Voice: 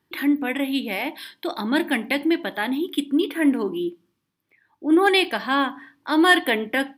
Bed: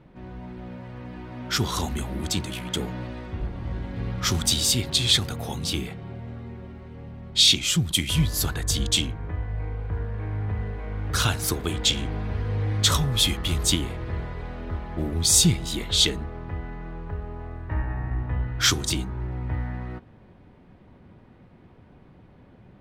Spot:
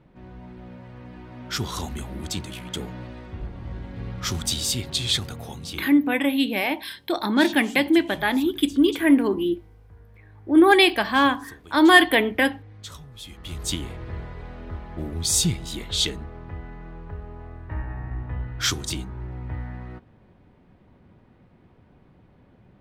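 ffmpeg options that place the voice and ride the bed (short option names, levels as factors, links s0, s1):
-filter_complex "[0:a]adelay=5650,volume=1.33[s0];[1:a]volume=4.47,afade=t=out:st=5.29:d=0.91:silence=0.149624,afade=t=in:st=13.26:d=0.61:silence=0.149624[s1];[s0][s1]amix=inputs=2:normalize=0"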